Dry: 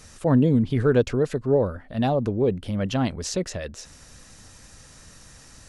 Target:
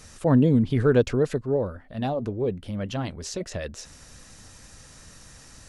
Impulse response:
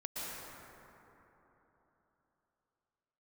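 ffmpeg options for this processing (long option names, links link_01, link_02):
-filter_complex "[0:a]asettb=1/sr,asplit=3[link_01][link_02][link_03];[link_01]atrim=end=1.414[link_04];[link_02]atrim=start=1.41:end=3.52,asetpts=PTS-STARTPTS,afade=type=in:duration=0.004:curve=qsin,afade=type=out:start_time=2.106:duration=0.004:curve=qsin,flanger=delay=1.6:depth=2.2:regen=-84:speed=1.9:shape=triangular[link_05];[link_03]atrim=start=3.516[link_06];[link_04][link_05]acrossfade=duration=0.004:curve1=hsin:curve2=qsin[link_07];[link_07][link_06]acrossfade=duration=0.004:curve1=qsin:curve2=hsin"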